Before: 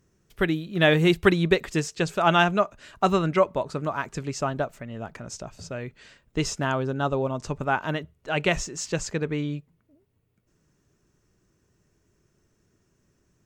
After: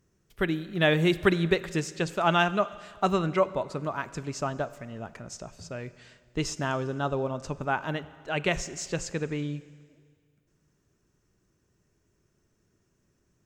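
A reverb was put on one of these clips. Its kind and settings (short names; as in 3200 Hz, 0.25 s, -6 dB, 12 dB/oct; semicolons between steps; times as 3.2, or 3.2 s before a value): Schroeder reverb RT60 1.9 s, combs from 32 ms, DRR 16 dB; gain -3.5 dB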